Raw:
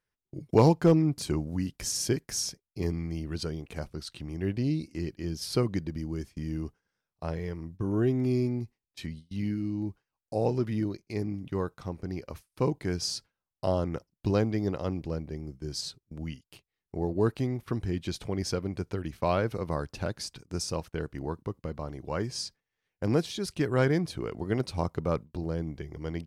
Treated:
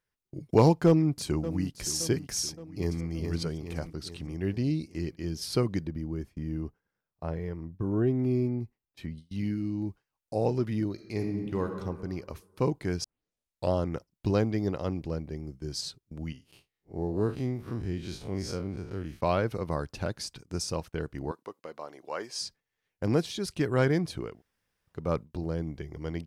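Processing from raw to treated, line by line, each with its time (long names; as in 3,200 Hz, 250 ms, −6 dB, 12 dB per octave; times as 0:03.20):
0:00.86–0:01.86: delay throw 570 ms, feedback 55%, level −13.5 dB
0:02.49–0:03.06: delay throw 420 ms, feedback 55%, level −5 dB
0:05.87–0:09.18: parametric band 6,500 Hz −11 dB 2.5 octaves
0:10.92–0:11.75: thrown reverb, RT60 1.6 s, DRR 4.5 dB
0:13.04: tape start 0.67 s
0:16.32–0:19.21: spectrum smeared in time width 89 ms
0:21.31–0:22.41: high-pass filter 490 Hz
0:24.30–0:24.99: fill with room tone, crossfade 0.24 s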